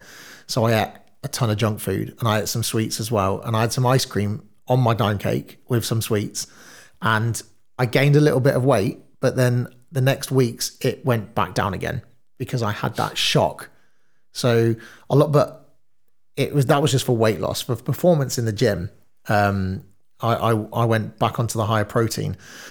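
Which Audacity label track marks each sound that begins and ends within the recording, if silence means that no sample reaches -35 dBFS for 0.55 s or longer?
14.360000	15.560000	sound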